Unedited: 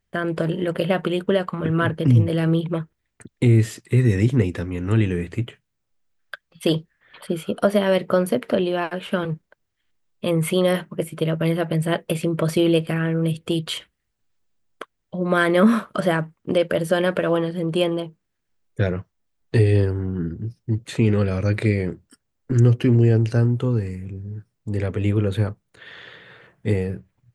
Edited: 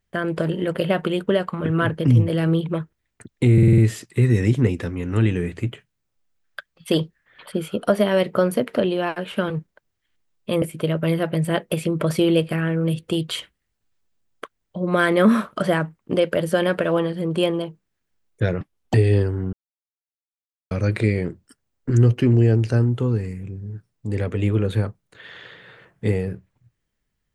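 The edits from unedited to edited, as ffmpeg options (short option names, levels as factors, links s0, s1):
-filter_complex "[0:a]asplit=11[s0][s1][s2][s3][s4][s5][s6][s7][s8][s9][s10];[s0]atrim=end=3.582[s11];[s1]atrim=start=3.528:end=3.582[s12];[s2]atrim=start=3.528:end=3.582[s13];[s3]atrim=start=3.528:end=3.582[s14];[s4]atrim=start=3.528:end=3.582[s15];[s5]atrim=start=3.528:end=10.372[s16];[s6]atrim=start=10.998:end=18.994[s17];[s7]atrim=start=18.99:end=19.56,asetpts=PTS-STARTPTS,asetrate=76293,aresample=44100,atrim=end_sample=14530,asetpts=PTS-STARTPTS[s18];[s8]atrim=start=19.556:end=20.15,asetpts=PTS-STARTPTS,afade=t=out:st=0.59:d=0.004:c=hsin[s19];[s9]atrim=start=20.15:end=21.33,asetpts=PTS-STARTPTS,volume=0[s20];[s10]atrim=start=21.33,asetpts=PTS-STARTPTS,afade=t=in:d=0.004:c=hsin[s21];[s11][s12]acrossfade=d=0.004:c1=hsin:c2=hsin[s22];[s22][s13]acrossfade=d=0.004:c1=hsin:c2=hsin[s23];[s23][s14]acrossfade=d=0.004:c1=hsin:c2=hsin[s24];[s24][s15]acrossfade=d=0.004:c1=hsin:c2=hsin[s25];[s25][s16]acrossfade=d=0.004:c1=hsin:c2=hsin[s26];[s26][s17]acrossfade=d=0.004:c1=hsin:c2=hsin[s27];[s27][s18]acrossfade=d=0.004:c1=hsin:c2=hsin[s28];[s19][s20][s21]concat=n=3:v=0:a=1[s29];[s28][s29]acrossfade=d=0.004:c1=hsin:c2=hsin"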